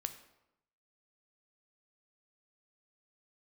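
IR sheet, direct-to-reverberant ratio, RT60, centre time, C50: 8.5 dB, 0.85 s, 9 ms, 12.0 dB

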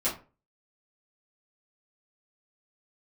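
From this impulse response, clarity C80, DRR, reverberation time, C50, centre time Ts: 15.0 dB, -10.5 dB, 0.35 s, 9.0 dB, 25 ms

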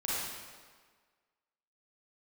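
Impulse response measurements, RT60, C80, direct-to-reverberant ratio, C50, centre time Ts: 1.6 s, -1.0 dB, -8.0 dB, -5.0 dB, 0.119 s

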